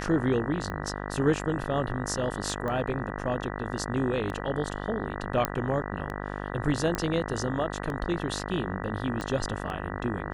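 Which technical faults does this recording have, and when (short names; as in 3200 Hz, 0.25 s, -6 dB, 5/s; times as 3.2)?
buzz 50 Hz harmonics 39 -35 dBFS
tick 33 1/3 rpm -22 dBFS
2.68 pop -21 dBFS
5.45 pop -9 dBFS
6.95 pop -14 dBFS
9.21 pop -20 dBFS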